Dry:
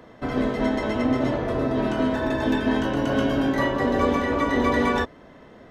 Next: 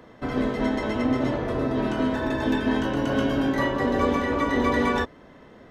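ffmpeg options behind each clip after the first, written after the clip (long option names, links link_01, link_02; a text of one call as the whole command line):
ffmpeg -i in.wav -af "equalizer=frequency=660:width=5.8:gain=-3,volume=-1dB" out.wav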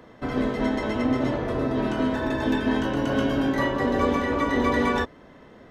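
ffmpeg -i in.wav -af anull out.wav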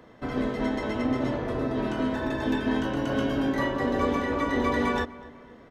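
ffmpeg -i in.wav -filter_complex "[0:a]asplit=2[link_01][link_02];[link_02]adelay=249,lowpass=frequency=2700:poles=1,volume=-19dB,asplit=2[link_03][link_04];[link_04]adelay=249,lowpass=frequency=2700:poles=1,volume=0.48,asplit=2[link_05][link_06];[link_06]adelay=249,lowpass=frequency=2700:poles=1,volume=0.48,asplit=2[link_07][link_08];[link_08]adelay=249,lowpass=frequency=2700:poles=1,volume=0.48[link_09];[link_01][link_03][link_05][link_07][link_09]amix=inputs=5:normalize=0,volume=-3dB" out.wav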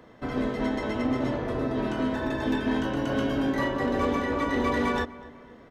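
ffmpeg -i in.wav -af "volume=19dB,asoftclip=hard,volume=-19dB" out.wav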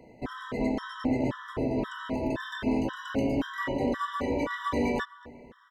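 ffmpeg -i in.wav -af "afftfilt=real='re*gt(sin(2*PI*1.9*pts/sr)*(1-2*mod(floor(b*sr/1024/990),2)),0)':imag='im*gt(sin(2*PI*1.9*pts/sr)*(1-2*mod(floor(b*sr/1024/990),2)),0)':win_size=1024:overlap=0.75" out.wav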